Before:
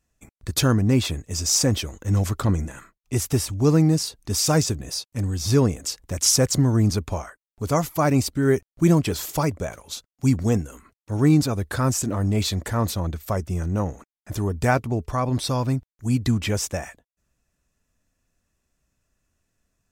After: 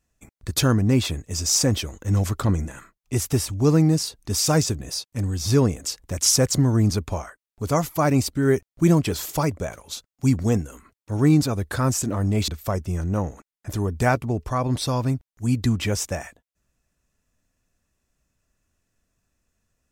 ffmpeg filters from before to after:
-filter_complex "[0:a]asplit=2[s0][s1];[s0]atrim=end=12.482[s2];[s1]atrim=start=13.098[s3];[s2][s3]acrossfade=d=0.004:c1=hsin:c2=hsin"

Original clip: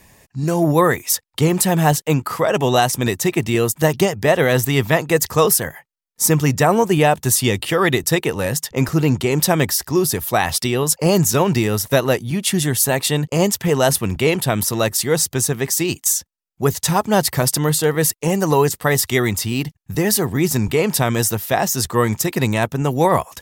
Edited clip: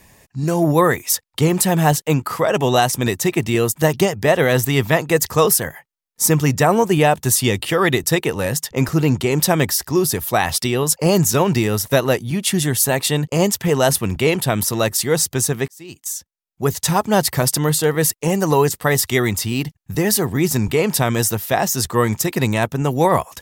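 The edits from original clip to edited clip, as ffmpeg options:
-filter_complex "[0:a]asplit=2[s0][s1];[s0]atrim=end=15.68,asetpts=PTS-STARTPTS,afade=t=out:st=15.676:d=0.004:c=hsin[s2];[s1]atrim=start=15.68,asetpts=PTS-STARTPTS,afade=t=in:d=1.17[s3];[s2][s3]concat=n=2:v=0:a=1"

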